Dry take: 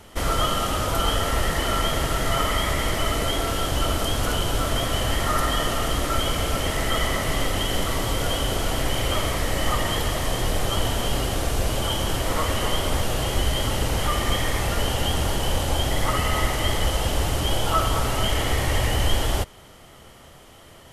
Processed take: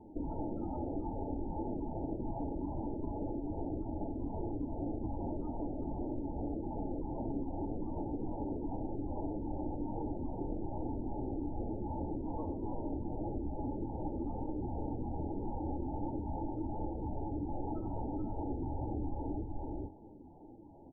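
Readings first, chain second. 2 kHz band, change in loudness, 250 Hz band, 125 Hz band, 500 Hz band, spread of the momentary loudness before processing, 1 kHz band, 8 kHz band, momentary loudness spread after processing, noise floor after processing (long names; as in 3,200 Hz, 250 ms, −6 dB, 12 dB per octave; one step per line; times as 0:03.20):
below −40 dB, −15.5 dB, −5.5 dB, −15.0 dB, −14.5 dB, 2 LU, −17.0 dB, below −40 dB, 1 LU, −52 dBFS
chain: auto-filter notch saw down 2.5 Hz 220–2,600 Hz
formant resonators in series u
low-shelf EQ 460 Hz −8 dB
on a send: single-tap delay 430 ms −7 dB
on the sum: downward compressor, threshold −46 dBFS, peak gain reduction 10 dB
flanger 1.8 Hz, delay 8.4 ms, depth 3.7 ms, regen −47%
high-frequency loss of the air 320 metres
spectral peaks only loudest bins 32
hum removal 45.08 Hz, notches 30
level +17 dB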